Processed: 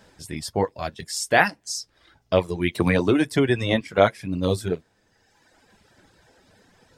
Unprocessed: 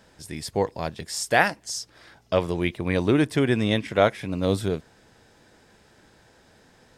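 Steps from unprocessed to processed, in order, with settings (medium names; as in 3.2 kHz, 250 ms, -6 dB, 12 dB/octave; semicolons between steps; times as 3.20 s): flange 1.2 Hz, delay 9.5 ms, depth 2.9 ms, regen -45%; reverb removal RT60 1.4 s; 2.75–3.81 s: three bands compressed up and down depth 100%; trim +6 dB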